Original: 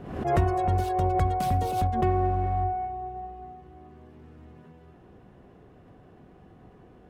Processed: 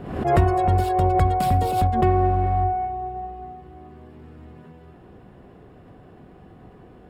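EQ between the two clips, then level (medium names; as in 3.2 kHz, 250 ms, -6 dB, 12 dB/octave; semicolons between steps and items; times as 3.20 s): band-stop 6.1 kHz, Q 5.9; +5.5 dB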